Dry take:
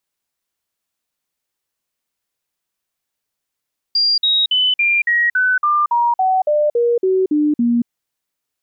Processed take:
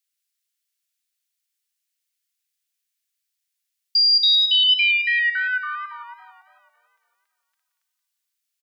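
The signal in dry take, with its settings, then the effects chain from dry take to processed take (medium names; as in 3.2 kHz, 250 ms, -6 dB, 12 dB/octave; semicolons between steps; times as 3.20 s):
stepped sine 4.78 kHz down, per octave 3, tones 14, 0.23 s, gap 0.05 s -12 dBFS
Bessel high-pass 2.5 kHz, order 8; delay 176 ms -7.5 dB; modulated delay 277 ms, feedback 43%, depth 80 cents, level -18.5 dB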